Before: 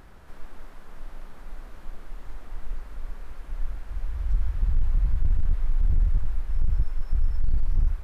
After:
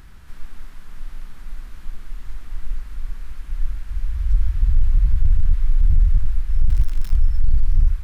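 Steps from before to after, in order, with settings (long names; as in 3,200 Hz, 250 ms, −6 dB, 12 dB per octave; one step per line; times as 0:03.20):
0:06.69–0:07.16: centre clipping without the shift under −35.5 dBFS
parametric band 570 Hz −14.5 dB 2 octaves
level +7 dB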